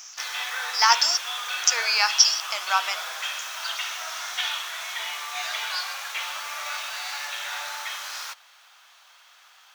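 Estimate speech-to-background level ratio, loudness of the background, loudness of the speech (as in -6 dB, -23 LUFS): 9.0 dB, -30.0 LUFS, -21.0 LUFS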